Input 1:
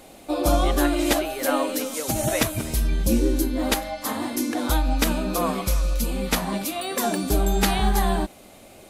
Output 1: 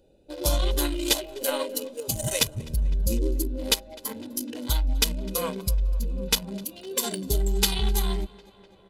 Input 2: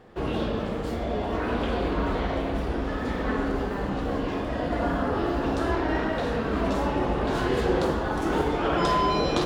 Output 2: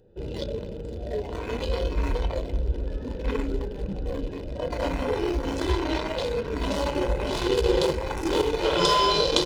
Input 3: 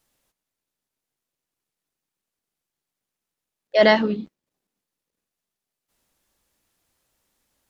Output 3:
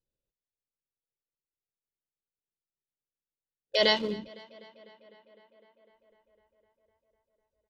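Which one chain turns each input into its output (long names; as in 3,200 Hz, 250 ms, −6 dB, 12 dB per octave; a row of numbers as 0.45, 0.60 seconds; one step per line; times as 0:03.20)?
adaptive Wiener filter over 41 samples
noise reduction from a noise print of the clip's start 9 dB
high shelf with overshoot 2,500 Hz +9 dB, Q 1.5
notch filter 670 Hz, Q 12
comb filter 2 ms, depth 48%
downward compressor 1.5 to 1, threshold −26 dBFS
tape delay 252 ms, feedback 79%, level −21 dB, low-pass 4,100 Hz
loudness normalisation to −27 LKFS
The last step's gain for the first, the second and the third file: −1.0, +5.0, −3.5 decibels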